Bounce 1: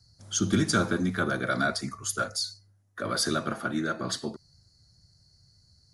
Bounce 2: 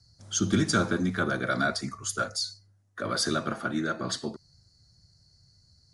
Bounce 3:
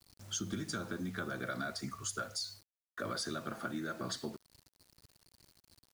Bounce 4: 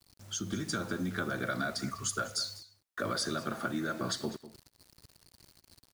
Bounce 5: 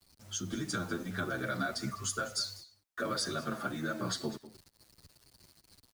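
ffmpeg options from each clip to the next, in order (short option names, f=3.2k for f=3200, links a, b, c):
-af "lowpass=f=9.6k:w=0.5412,lowpass=f=9.6k:w=1.3066"
-af "acompressor=threshold=-31dB:ratio=20,acrusher=bits=8:mix=0:aa=0.000001,volume=-3.5dB"
-filter_complex "[0:a]asplit=2[a][b];[b]adelay=198.3,volume=-15dB,highshelf=f=4k:g=-4.46[c];[a][c]amix=inputs=2:normalize=0,dynaudnorm=f=340:g=3:m=5dB"
-filter_complex "[0:a]asplit=2[a][b];[b]adelay=8.2,afreqshift=-2.4[c];[a][c]amix=inputs=2:normalize=1,volume=2dB"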